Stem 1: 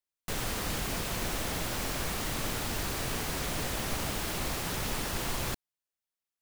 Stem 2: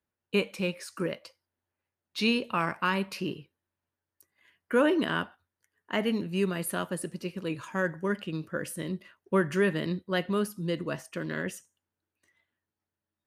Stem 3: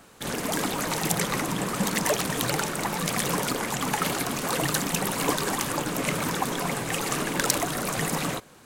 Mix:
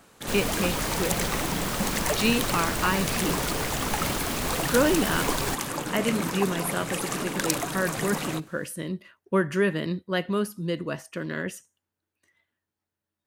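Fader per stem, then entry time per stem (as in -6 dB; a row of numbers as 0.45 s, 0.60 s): +2.5 dB, +2.0 dB, -3.0 dB; 0.00 s, 0.00 s, 0.00 s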